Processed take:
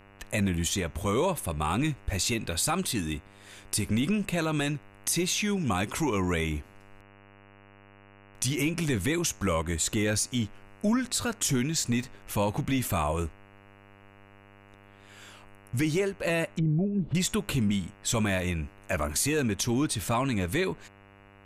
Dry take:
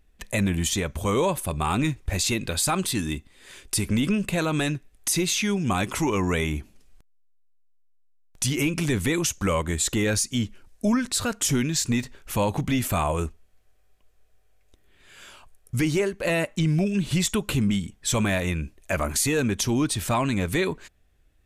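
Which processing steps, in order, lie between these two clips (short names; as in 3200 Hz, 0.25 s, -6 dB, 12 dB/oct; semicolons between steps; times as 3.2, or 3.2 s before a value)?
buzz 100 Hz, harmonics 29, -51 dBFS -3 dB/oct; 16.5–17.15 treble ducked by the level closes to 540 Hz, closed at -22 dBFS; gain -3.5 dB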